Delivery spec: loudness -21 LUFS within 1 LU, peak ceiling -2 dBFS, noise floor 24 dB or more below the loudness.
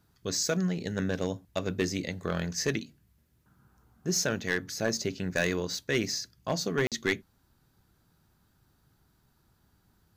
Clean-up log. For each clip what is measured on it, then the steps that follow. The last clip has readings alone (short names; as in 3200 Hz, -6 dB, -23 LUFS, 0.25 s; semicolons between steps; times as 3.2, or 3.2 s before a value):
clipped 0.2%; flat tops at -19.0 dBFS; dropouts 1; longest dropout 47 ms; loudness -31.0 LUFS; peak -19.0 dBFS; loudness target -21.0 LUFS
-> clip repair -19 dBFS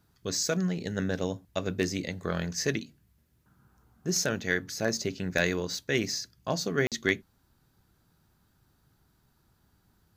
clipped 0.0%; dropouts 1; longest dropout 47 ms
-> interpolate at 6.87, 47 ms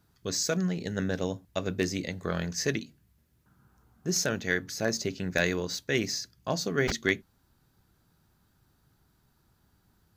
dropouts 0; loudness -30.5 LUFS; peak -10.0 dBFS; loudness target -21.0 LUFS
-> gain +9.5 dB; limiter -2 dBFS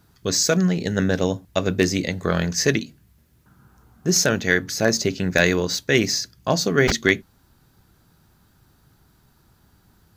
loudness -21.0 LUFS; peak -2.0 dBFS; noise floor -60 dBFS